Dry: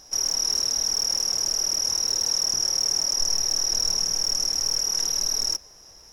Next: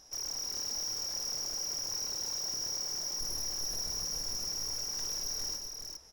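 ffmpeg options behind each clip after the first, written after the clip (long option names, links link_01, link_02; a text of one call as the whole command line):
ffmpeg -i in.wav -filter_complex "[0:a]volume=26dB,asoftclip=hard,volume=-26dB,asplit=2[link_01][link_02];[link_02]aecho=0:1:126|404:0.376|0.531[link_03];[link_01][link_03]amix=inputs=2:normalize=0,volume=-8.5dB" out.wav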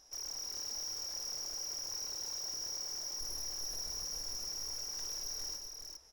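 ffmpeg -i in.wav -af "equalizer=frequency=160:width_type=o:width=1.4:gain=-6.5,volume=-4.5dB" out.wav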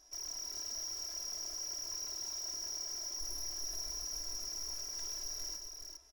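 ffmpeg -i in.wav -af "aecho=1:1:3:0.83,volume=-3.5dB" out.wav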